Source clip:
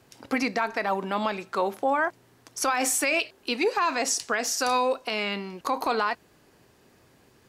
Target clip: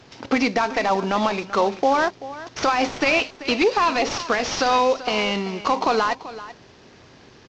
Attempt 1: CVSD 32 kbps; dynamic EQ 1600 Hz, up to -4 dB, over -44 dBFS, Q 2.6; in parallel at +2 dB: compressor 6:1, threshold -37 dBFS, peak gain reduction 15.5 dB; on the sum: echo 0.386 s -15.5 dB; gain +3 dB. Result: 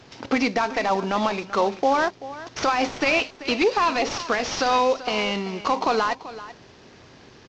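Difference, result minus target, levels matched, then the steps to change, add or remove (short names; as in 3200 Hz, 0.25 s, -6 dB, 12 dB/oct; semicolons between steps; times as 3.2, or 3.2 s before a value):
compressor: peak gain reduction +6 dB
change: compressor 6:1, threshold -30 dBFS, peak gain reduction 10 dB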